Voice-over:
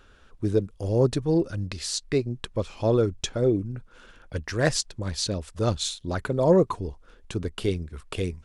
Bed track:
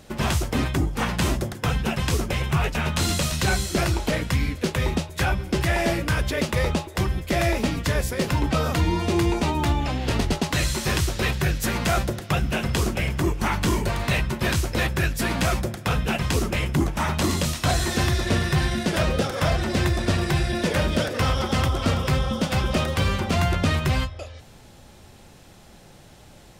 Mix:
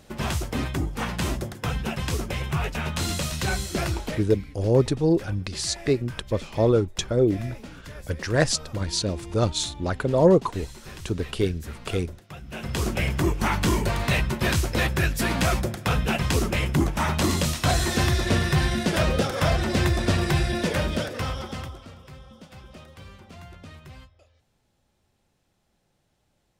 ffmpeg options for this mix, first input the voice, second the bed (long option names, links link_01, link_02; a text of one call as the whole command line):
ffmpeg -i stem1.wav -i stem2.wav -filter_complex "[0:a]adelay=3750,volume=2dB[link_01];[1:a]volume=14dB,afade=type=out:start_time=3.93:duration=0.43:silence=0.199526,afade=type=in:start_time=12.45:duration=0.55:silence=0.125893,afade=type=out:start_time=20.38:duration=1.49:silence=0.0749894[link_02];[link_01][link_02]amix=inputs=2:normalize=0" out.wav